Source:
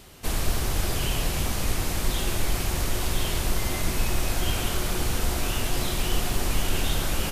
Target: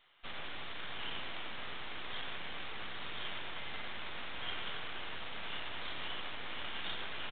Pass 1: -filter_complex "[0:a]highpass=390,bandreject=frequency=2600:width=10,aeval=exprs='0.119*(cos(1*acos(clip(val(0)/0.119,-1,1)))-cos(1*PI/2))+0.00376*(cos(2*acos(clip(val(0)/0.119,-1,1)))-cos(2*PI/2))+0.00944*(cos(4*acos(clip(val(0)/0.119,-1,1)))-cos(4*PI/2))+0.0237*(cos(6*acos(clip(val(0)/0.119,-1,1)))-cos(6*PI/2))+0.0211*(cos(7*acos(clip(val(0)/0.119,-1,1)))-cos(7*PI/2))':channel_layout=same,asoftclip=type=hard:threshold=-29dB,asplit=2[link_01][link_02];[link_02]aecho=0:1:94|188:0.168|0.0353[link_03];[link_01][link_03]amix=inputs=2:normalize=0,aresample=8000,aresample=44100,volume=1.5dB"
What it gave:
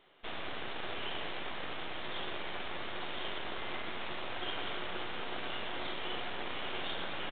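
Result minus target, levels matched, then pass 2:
500 Hz band +5.5 dB
-filter_complex "[0:a]highpass=1200,bandreject=frequency=2600:width=10,aeval=exprs='0.119*(cos(1*acos(clip(val(0)/0.119,-1,1)))-cos(1*PI/2))+0.00376*(cos(2*acos(clip(val(0)/0.119,-1,1)))-cos(2*PI/2))+0.00944*(cos(4*acos(clip(val(0)/0.119,-1,1)))-cos(4*PI/2))+0.0237*(cos(6*acos(clip(val(0)/0.119,-1,1)))-cos(6*PI/2))+0.0211*(cos(7*acos(clip(val(0)/0.119,-1,1)))-cos(7*PI/2))':channel_layout=same,asoftclip=type=hard:threshold=-29dB,asplit=2[link_01][link_02];[link_02]aecho=0:1:94|188:0.168|0.0353[link_03];[link_01][link_03]amix=inputs=2:normalize=0,aresample=8000,aresample=44100,volume=1.5dB"

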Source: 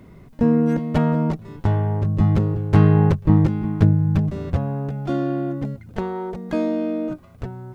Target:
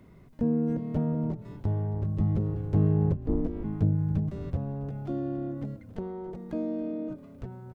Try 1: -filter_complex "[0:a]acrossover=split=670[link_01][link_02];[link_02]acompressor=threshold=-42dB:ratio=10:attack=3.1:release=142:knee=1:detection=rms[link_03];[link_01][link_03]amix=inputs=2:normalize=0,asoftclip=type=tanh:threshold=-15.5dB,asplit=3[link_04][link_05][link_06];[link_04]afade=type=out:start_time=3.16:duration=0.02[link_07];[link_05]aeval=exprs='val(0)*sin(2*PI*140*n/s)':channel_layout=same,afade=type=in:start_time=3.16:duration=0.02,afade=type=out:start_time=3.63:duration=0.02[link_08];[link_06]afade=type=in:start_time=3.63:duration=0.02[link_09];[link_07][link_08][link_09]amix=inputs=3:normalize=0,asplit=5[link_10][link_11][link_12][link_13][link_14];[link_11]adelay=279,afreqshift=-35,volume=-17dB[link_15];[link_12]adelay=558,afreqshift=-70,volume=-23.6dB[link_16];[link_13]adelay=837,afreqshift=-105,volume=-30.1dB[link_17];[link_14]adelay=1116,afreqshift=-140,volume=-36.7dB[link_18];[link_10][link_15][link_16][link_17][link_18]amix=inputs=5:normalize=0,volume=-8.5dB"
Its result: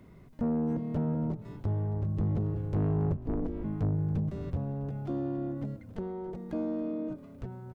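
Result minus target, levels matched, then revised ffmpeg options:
soft clipping: distortion +15 dB
-filter_complex "[0:a]acrossover=split=670[link_01][link_02];[link_02]acompressor=threshold=-42dB:ratio=10:attack=3.1:release=142:knee=1:detection=rms[link_03];[link_01][link_03]amix=inputs=2:normalize=0,asoftclip=type=tanh:threshold=-3.5dB,asplit=3[link_04][link_05][link_06];[link_04]afade=type=out:start_time=3.16:duration=0.02[link_07];[link_05]aeval=exprs='val(0)*sin(2*PI*140*n/s)':channel_layout=same,afade=type=in:start_time=3.16:duration=0.02,afade=type=out:start_time=3.63:duration=0.02[link_08];[link_06]afade=type=in:start_time=3.63:duration=0.02[link_09];[link_07][link_08][link_09]amix=inputs=3:normalize=0,asplit=5[link_10][link_11][link_12][link_13][link_14];[link_11]adelay=279,afreqshift=-35,volume=-17dB[link_15];[link_12]adelay=558,afreqshift=-70,volume=-23.6dB[link_16];[link_13]adelay=837,afreqshift=-105,volume=-30.1dB[link_17];[link_14]adelay=1116,afreqshift=-140,volume=-36.7dB[link_18];[link_10][link_15][link_16][link_17][link_18]amix=inputs=5:normalize=0,volume=-8.5dB"

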